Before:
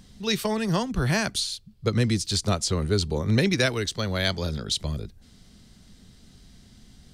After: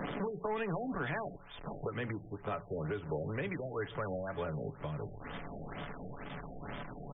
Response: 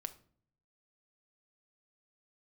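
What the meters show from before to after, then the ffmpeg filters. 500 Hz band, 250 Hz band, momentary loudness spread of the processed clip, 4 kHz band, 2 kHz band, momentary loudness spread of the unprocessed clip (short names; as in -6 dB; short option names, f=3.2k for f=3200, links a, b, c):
-8.5 dB, -13.5 dB, 9 LU, -25.0 dB, -12.0 dB, 7 LU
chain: -filter_complex "[0:a]aeval=exprs='val(0)+0.5*0.015*sgn(val(0))':c=same,lowshelf=f=140:g=-6,aecho=1:1:7:0.43,bandreject=f=59.16:t=h:w=4,bandreject=f=118.32:t=h:w=4,bandreject=f=177.48:t=h:w=4,asubboost=boost=6.5:cutoff=100,acompressor=threshold=-36dB:ratio=6,alimiter=level_in=5.5dB:limit=-24dB:level=0:latency=1:release=261,volume=-5.5dB,acrossover=split=160|1700[a][b][c];[a]acompressor=threshold=-55dB:ratio=4[d];[b]acompressor=threshold=-42dB:ratio=4[e];[c]acompressor=threshold=-56dB:ratio=4[f];[d][e][f]amix=inputs=3:normalize=0,asplit=2[g][h];[h]highpass=f=720:p=1,volume=16dB,asoftclip=type=tanh:threshold=-30dB[i];[g][i]amix=inputs=2:normalize=0,lowpass=f=3.1k:p=1,volume=-6dB,asplit=2[j][k];[k]adelay=139.9,volume=-23dB,highshelf=f=4k:g=-3.15[l];[j][l]amix=inputs=2:normalize=0,asplit=2[m][n];[1:a]atrim=start_sample=2205,lowshelf=f=320:g=7[o];[n][o]afir=irnorm=-1:irlink=0,volume=-3.5dB[p];[m][p]amix=inputs=2:normalize=0,afftfilt=real='re*lt(b*sr/1024,780*pow(3700/780,0.5+0.5*sin(2*PI*2.1*pts/sr)))':imag='im*lt(b*sr/1024,780*pow(3700/780,0.5+0.5*sin(2*PI*2.1*pts/sr)))':win_size=1024:overlap=0.75,volume=1.5dB"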